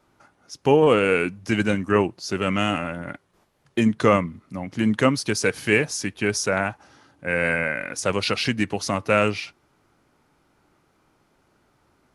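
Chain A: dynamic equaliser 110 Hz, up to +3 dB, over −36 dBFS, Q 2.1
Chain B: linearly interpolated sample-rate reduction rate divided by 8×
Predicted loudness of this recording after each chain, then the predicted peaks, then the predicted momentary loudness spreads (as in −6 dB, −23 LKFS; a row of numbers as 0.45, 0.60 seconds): −22.5, −23.5 LKFS; −3.5, −4.0 dBFS; 12, 12 LU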